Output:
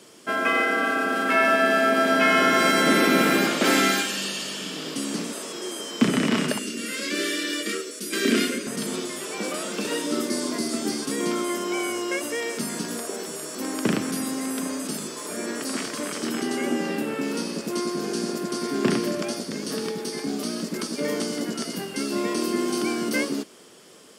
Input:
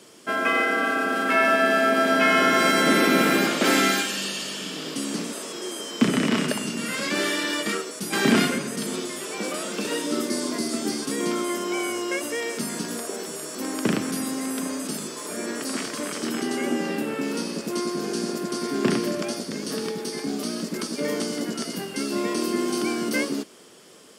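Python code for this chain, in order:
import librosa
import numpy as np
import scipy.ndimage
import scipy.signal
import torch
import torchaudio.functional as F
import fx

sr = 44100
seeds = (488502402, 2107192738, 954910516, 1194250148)

y = fx.fixed_phaser(x, sr, hz=350.0, stages=4, at=(6.59, 8.67))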